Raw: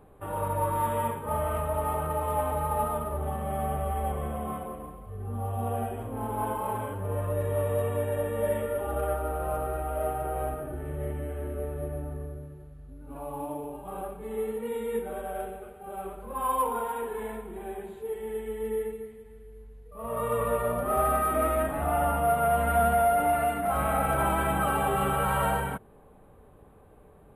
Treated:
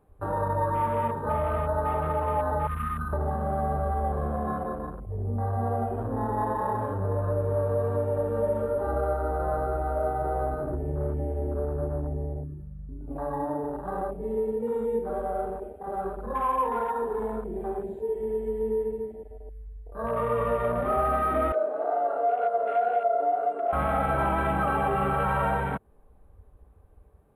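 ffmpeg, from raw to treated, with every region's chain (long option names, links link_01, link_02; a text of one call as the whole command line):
ffmpeg -i in.wav -filter_complex "[0:a]asettb=1/sr,asplit=3[link_01][link_02][link_03];[link_01]atrim=end=2.674[link_04];[link_02]atrim=start=2.67:end=3.13,asetpts=PTS-STARTPTS,afade=type=in:duration=0.004:curve=qsin,afade=type=out:start_time=0.456:duration=0.004:curve=qsin,asuperstop=centerf=750:order=20:qfactor=1.7,equalizer=frequency=420:width_type=o:width=1.2:gain=-14.5[link_05];[link_03]atrim=start=3.126[link_06];[link_04][link_05]acrossfade=duration=0.004:curve1=hsin:curve2=qsin[link_07];[link_07][link_06]acrossfade=duration=0.004:curve1=qsin:curve2=hsin,asettb=1/sr,asplit=3[link_08][link_09][link_10];[link_08]atrim=end=21.524[link_11];[link_09]atrim=start=21.52:end=23.73,asetpts=PTS-STARTPTS,afade=type=in:duration=0.004:curve=qsin,afade=type=out:start_time=2.206:duration=0.004:curve=qsin,highpass=frequency=390:width=0.5412,highpass=frequency=390:width=1.3066,equalizer=frequency=420:width_type=q:width=4:gain=10,equalizer=frequency=640:width_type=q:width=4:gain=5,equalizer=frequency=950:width_type=q:width=4:gain=-10,equalizer=frequency=1300:width_type=q:width=4:gain=-5,equalizer=frequency=1900:width_type=q:width=4:gain=-7,equalizer=frequency=5000:width_type=q:width=4:gain=-7,lowpass=frequency=7100:width=0.5412,lowpass=frequency=7100:width=1.3066,flanger=delay=16.5:depth=7.8:speed=2[link_12];[link_10]atrim=start=23.726[link_13];[link_11][link_12]acrossfade=duration=0.004:curve1=hsin:curve2=qsin[link_14];[link_14][link_13]acrossfade=duration=0.004:curve1=qsin:curve2=hsin,afwtdn=0.0126,equalizer=frequency=3000:width=1.5:gain=-2.5,acompressor=threshold=-34dB:ratio=2,volume=7dB" out.wav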